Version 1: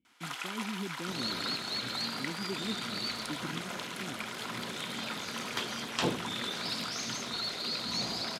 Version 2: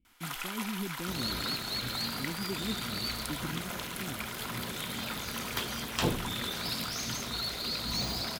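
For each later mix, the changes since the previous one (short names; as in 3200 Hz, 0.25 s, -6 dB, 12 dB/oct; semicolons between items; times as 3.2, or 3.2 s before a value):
master: remove BPF 170–7900 Hz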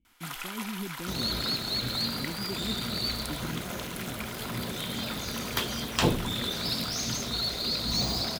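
second sound +5.0 dB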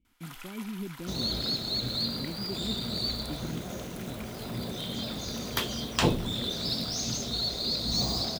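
first sound -8.5 dB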